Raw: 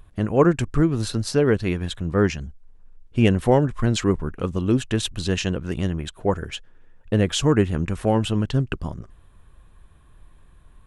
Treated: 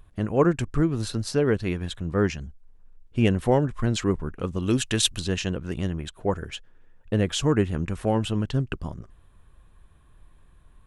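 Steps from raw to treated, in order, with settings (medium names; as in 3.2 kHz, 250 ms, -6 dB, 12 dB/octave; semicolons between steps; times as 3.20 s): 4.62–5.20 s: treble shelf 2 kHz +11.5 dB; trim -3.5 dB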